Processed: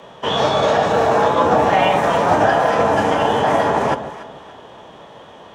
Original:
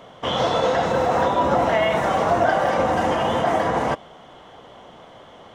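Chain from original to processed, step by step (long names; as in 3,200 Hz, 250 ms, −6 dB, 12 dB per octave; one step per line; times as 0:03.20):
phase-vocoder pitch shift with formants kept −3 semitones
delay that swaps between a low-pass and a high-pass 144 ms, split 810 Hz, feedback 55%, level −9 dB
frequency shifter +26 Hz
level +4.5 dB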